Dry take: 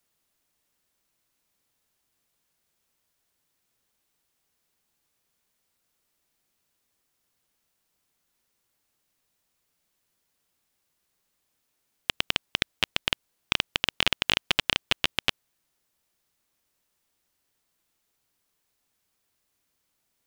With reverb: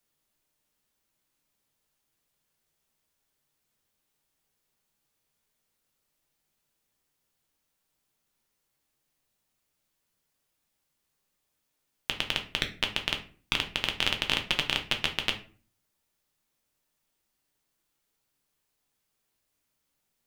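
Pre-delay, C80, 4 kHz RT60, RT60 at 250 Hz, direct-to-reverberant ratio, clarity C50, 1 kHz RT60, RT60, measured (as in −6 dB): 5 ms, 17.5 dB, 0.30 s, 0.55 s, 3.5 dB, 12.0 dB, 0.35 s, 0.40 s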